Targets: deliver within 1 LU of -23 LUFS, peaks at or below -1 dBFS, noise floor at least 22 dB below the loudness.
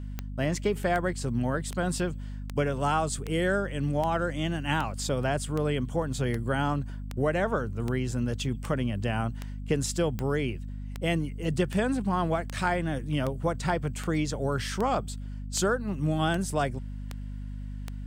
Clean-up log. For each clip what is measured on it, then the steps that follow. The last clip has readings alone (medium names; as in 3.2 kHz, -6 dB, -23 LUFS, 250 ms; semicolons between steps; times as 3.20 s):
clicks found 24; hum 50 Hz; highest harmonic 250 Hz; hum level -34 dBFS; loudness -29.0 LUFS; peak level -13.0 dBFS; loudness target -23.0 LUFS
-> de-click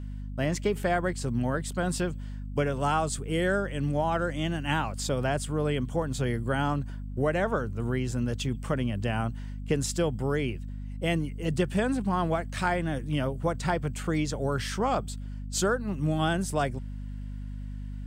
clicks found 0; hum 50 Hz; highest harmonic 250 Hz; hum level -34 dBFS
-> de-hum 50 Hz, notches 5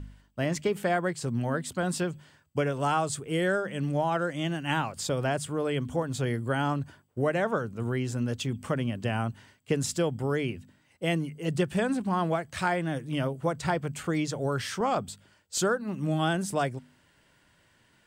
hum not found; loudness -29.5 LUFS; peak level -13.5 dBFS; loudness target -23.0 LUFS
-> trim +6.5 dB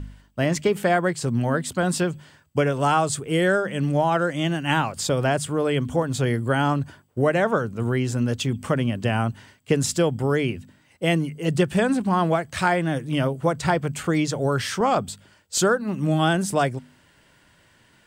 loudness -23.0 LUFS; peak level -7.0 dBFS; noise floor -58 dBFS